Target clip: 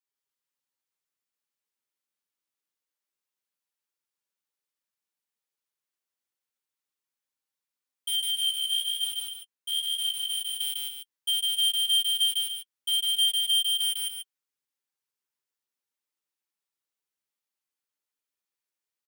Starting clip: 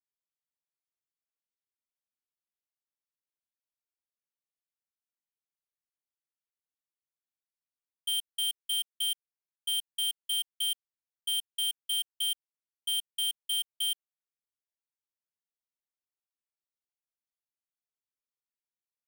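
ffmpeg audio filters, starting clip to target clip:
-filter_complex "[0:a]flanger=delay=7.3:depth=3:regen=20:speed=0.14:shape=sinusoidal,asuperstop=centerf=680:order=4:qfactor=6.1,asplit=3[a][b][c];[a]afade=t=out:st=8.16:d=0.02[d];[b]flanger=delay=16.5:depth=7:speed=1.1,afade=t=in:st=8.16:d=0.02,afade=t=out:st=10.41:d=0.02[e];[c]afade=t=in:st=10.41:d=0.02[f];[d][e][f]amix=inputs=3:normalize=0,highpass=f=240:p=1,aecho=1:1:151.6|288.6:0.891|0.398,volume=6dB"

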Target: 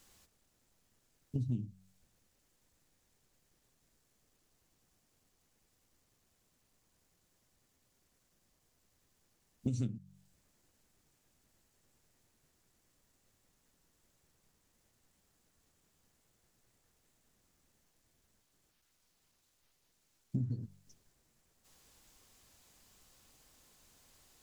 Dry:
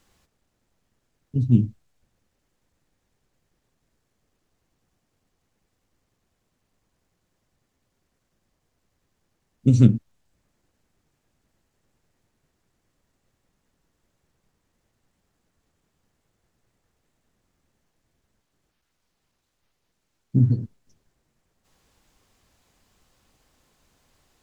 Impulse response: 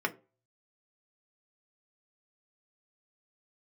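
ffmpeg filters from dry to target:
-af "highshelf=f=4.2k:g=10.5,bandreject=f=47.23:t=h:w=4,bandreject=f=94.46:t=h:w=4,bandreject=f=141.69:t=h:w=4,bandreject=f=188.92:t=h:w=4,acompressor=threshold=-28dB:ratio=10,volume=-4dB"

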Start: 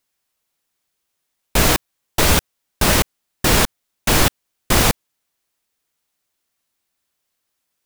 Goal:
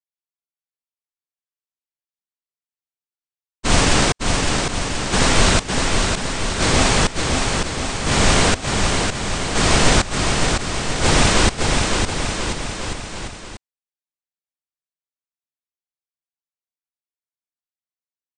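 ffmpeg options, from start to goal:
-af "agate=range=-33dB:threshold=-11dB:ratio=3:detection=peak,asetrate=18846,aresample=44100,aecho=1:1:560|1036|1441|1785|2077:0.631|0.398|0.251|0.158|0.1,volume=1dB"

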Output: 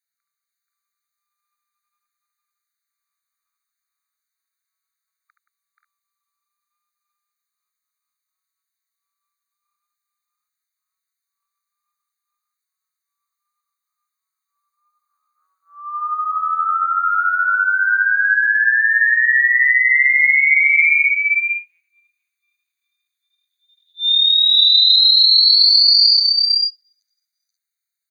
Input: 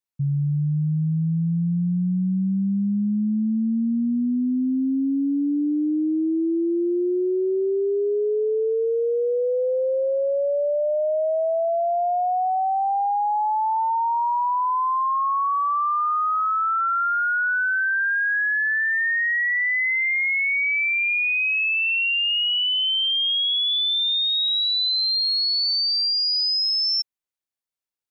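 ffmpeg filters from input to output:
-af "asetnsamples=n=441:p=0,asendcmd='5.3 equalizer g -14.5',equalizer=f=940:t=o:w=1:g=-3,aecho=1:1:73|175|481|505|531|544:0.473|0.282|0.668|0.106|0.473|0.282,afftfilt=real='re*eq(mod(floor(b*sr/1024/1200),2),1)':imag='im*eq(mod(floor(b*sr/1024/1200),2),1)':win_size=1024:overlap=0.75,volume=8dB"

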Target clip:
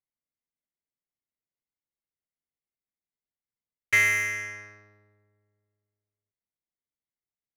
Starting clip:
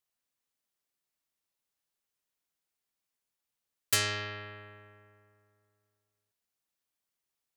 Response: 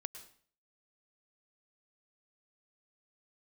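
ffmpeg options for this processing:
-af "lowpass=f=2.1k:t=q:w=15,adynamicsmooth=sensitivity=6:basefreq=530,volume=-2dB"

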